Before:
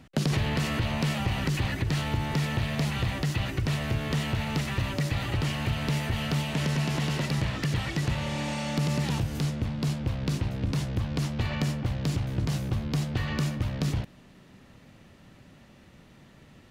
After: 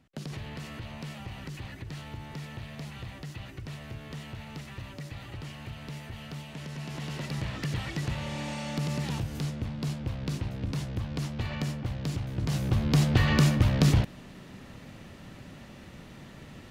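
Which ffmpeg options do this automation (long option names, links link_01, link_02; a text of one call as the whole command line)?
ffmpeg -i in.wav -af "volume=6.5dB,afade=type=in:start_time=6.7:duration=0.94:silence=0.375837,afade=type=in:start_time=12.36:duration=0.73:silence=0.298538" out.wav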